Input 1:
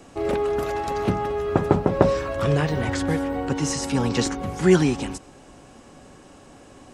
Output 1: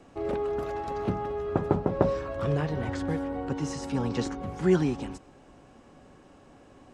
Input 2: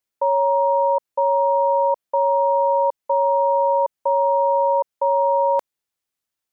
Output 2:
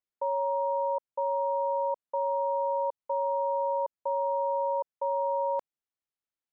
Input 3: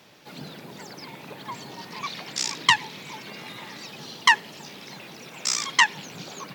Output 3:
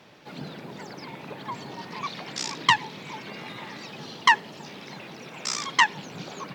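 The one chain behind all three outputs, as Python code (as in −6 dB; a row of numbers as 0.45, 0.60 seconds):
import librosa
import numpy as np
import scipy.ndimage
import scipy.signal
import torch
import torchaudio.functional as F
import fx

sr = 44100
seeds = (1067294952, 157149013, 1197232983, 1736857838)

y = fx.lowpass(x, sr, hz=2800.0, slope=6)
y = fx.dynamic_eq(y, sr, hz=2200.0, q=1.2, threshold_db=-41.0, ratio=4.0, max_db=-3)
y = y * 10.0 ** (-30 / 20.0) / np.sqrt(np.mean(np.square(y)))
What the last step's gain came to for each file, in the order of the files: −6.0, −10.0, +2.5 decibels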